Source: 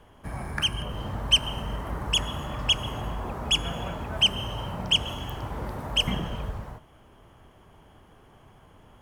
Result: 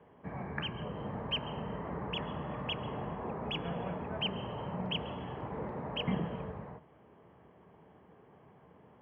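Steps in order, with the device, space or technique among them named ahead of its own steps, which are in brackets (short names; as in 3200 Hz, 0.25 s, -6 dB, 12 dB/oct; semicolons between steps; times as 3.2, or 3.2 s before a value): bass cabinet (speaker cabinet 83–2300 Hz, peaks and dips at 99 Hz -9 dB, 180 Hz +5 dB, 450 Hz +6 dB, 1400 Hz -6 dB); gain -4.5 dB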